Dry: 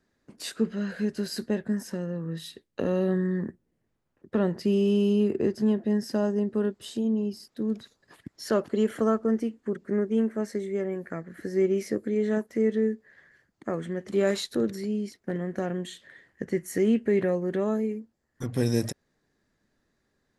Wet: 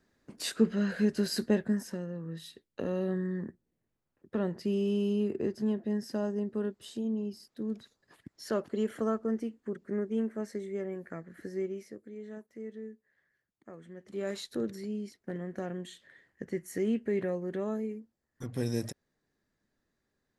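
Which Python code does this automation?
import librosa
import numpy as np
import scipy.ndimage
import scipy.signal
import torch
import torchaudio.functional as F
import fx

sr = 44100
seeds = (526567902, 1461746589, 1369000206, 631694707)

y = fx.gain(x, sr, db=fx.line((1.55, 1.0), (2.09, -6.5), (11.43, -6.5), (11.97, -18.0), (13.76, -18.0), (14.55, -7.0)))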